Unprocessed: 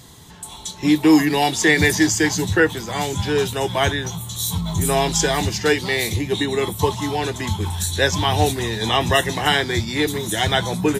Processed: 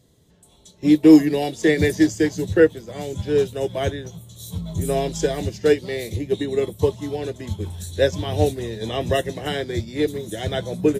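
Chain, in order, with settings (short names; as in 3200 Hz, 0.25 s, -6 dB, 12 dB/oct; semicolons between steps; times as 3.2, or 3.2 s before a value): resonant low shelf 710 Hz +6.5 dB, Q 3; upward expander 1.5:1, over -31 dBFS; gain -4.5 dB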